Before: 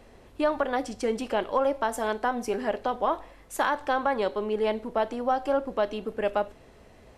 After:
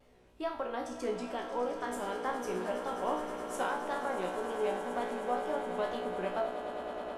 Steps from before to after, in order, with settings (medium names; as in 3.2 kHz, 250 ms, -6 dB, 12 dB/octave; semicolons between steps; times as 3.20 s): wow and flutter 150 cents; feedback comb 61 Hz, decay 0.51 s, harmonics all, mix 90%; gain riding 0.5 s; on a send: echo with a slow build-up 105 ms, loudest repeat 8, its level -14 dB